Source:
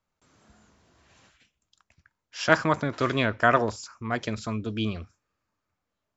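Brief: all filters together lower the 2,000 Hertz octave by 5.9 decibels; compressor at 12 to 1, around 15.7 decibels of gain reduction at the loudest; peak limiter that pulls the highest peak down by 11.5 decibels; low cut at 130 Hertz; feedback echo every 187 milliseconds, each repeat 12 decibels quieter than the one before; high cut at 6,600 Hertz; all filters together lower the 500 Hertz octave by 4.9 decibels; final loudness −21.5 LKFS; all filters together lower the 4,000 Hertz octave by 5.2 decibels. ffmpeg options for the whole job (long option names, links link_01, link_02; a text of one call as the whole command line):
ffmpeg -i in.wav -af "highpass=130,lowpass=6600,equalizer=frequency=500:width_type=o:gain=-6,equalizer=frequency=2000:width_type=o:gain=-7.5,equalizer=frequency=4000:width_type=o:gain=-3.5,acompressor=threshold=-34dB:ratio=12,alimiter=level_in=6.5dB:limit=-24dB:level=0:latency=1,volume=-6.5dB,aecho=1:1:187|374|561:0.251|0.0628|0.0157,volume=21.5dB" out.wav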